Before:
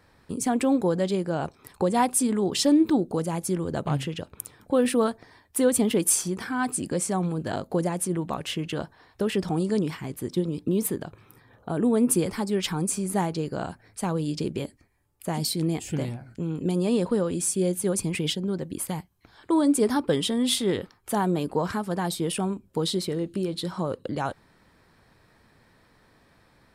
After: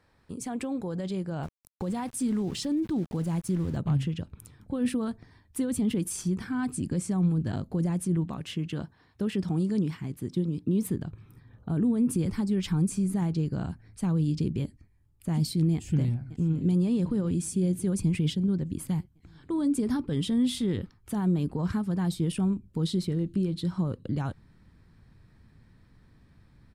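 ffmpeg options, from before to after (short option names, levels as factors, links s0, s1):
-filter_complex "[0:a]asettb=1/sr,asplit=3[s0][s1][s2];[s0]atrim=end=1.434[s3];[s1]atrim=start=1.43:end=3.77,asetpts=PTS-STARTPTS,afade=t=in:d=0.004:c=qsin,afade=t=out:st=2.336:d=0.004:c=qsin,aeval=exprs='val(0)*gte(abs(val(0)),0.0126)':c=same[s4];[s2]atrim=start=3.766[s5];[s3][s4]acrossfade=d=0.004:c1=hsin:c2=qsin[s6];[s6][s5]acrossfade=d=0.004:c1=qsin:c2=hsin,asettb=1/sr,asplit=3[s7][s8][s9];[s7]atrim=end=8.244[s10];[s8]atrim=start=8.24:end=10.87,asetpts=PTS-STARTPTS,afade=t=in:d=0.004:c=qsin,afade=t=out:st=2.626:d=0.004:c=qsin,highpass=f=180:p=1[s11];[s9]atrim=start=10.866[s12];[s10][s11]acrossfade=d=0.004:c1=hsin:c2=qsin[s13];[s13][s12]acrossfade=d=0.004:c1=qsin:c2=hsin,asplit=2[s14][s15];[s15]afade=t=in:st=15.73:d=0.01,afade=t=out:st=16.77:d=0.01,aecho=0:1:570|1140|1710|2280|2850|3420|3990:0.158489|0.103018|0.0669617|0.0435251|0.0282913|0.0183894|0.0119531[s16];[s14][s16]amix=inputs=2:normalize=0,highshelf=f=11000:g=-7,alimiter=limit=0.126:level=0:latency=1:release=23,asubboost=boost=6:cutoff=220,volume=0.447"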